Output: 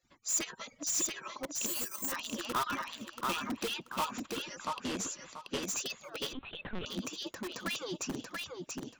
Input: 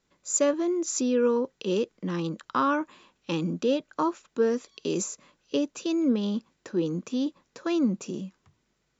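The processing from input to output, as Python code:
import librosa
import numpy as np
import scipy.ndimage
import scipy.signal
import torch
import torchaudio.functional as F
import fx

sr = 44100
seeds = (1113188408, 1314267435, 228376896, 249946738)

p1 = fx.hpss_only(x, sr, part='percussive')
p2 = (np.mod(10.0 ** (30.5 / 20.0) * p1 + 1.0, 2.0) - 1.0) / 10.0 ** (30.5 / 20.0)
p3 = p1 + (p2 * 10.0 ** (-3.0 / 20.0))
p4 = fx.peak_eq(p3, sr, hz=440.0, db=-8.5, octaves=0.42)
p5 = p4 + fx.echo_feedback(p4, sr, ms=683, feedback_pct=23, wet_db=-4, dry=0)
p6 = fx.resample_bad(p5, sr, factor=6, down='filtered', up='zero_stuff', at=(1.66, 2.12))
p7 = fx.lpc_vocoder(p6, sr, seeds[0], excitation='pitch_kept', order=10, at=(6.33, 6.86))
p8 = 10.0 ** (-25.0 / 20.0) * np.tanh(p7 / 10.0 ** (-25.0 / 20.0))
y = fx.air_absorb(p8, sr, metres=54.0, at=(4.53, 5.63))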